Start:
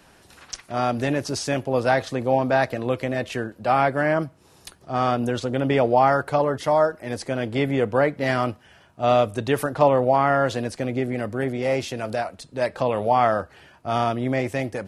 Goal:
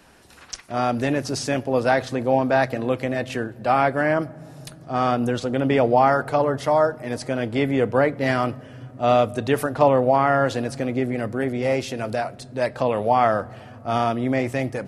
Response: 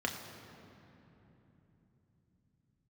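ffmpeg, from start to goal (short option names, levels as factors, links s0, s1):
-filter_complex "[0:a]asplit=2[s0][s1];[1:a]atrim=start_sample=2205,lowshelf=f=200:g=12[s2];[s1][s2]afir=irnorm=-1:irlink=0,volume=0.0668[s3];[s0][s3]amix=inputs=2:normalize=0"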